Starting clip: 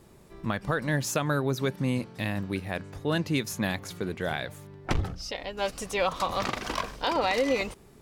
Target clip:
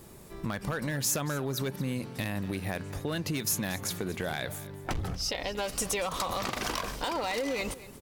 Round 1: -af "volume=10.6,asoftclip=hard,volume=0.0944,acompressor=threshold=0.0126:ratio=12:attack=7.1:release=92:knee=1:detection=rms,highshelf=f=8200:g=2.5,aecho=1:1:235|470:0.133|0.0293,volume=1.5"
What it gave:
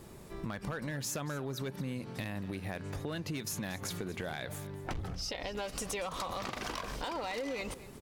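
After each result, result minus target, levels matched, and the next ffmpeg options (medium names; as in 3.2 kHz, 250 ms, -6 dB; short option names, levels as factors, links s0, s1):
compression: peak gain reduction +5.5 dB; 8 kHz band -2.5 dB
-af "volume=10.6,asoftclip=hard,volume=0.0944,acompressor=threshold=0.0251:ratio=12:attack=7.1:release=92:knee=1:detection=rms,highshelf=f=8200:g=2.5,aecho=1:1:235|470:0.133|0.0293,volume=1.5"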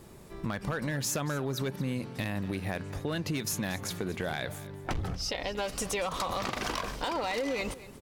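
8 kHz band -3.0 dB
-af "volume=10.6,asoftclip=hard,volume=0.0944,acompressor=threshold=0.0251:ratio=12:attack=7.1:release=92:knee=1:detection=rms,highshelf=f=8200:g=11,aecho=1:1:235|470:0.133|0.0293,volume=1.5"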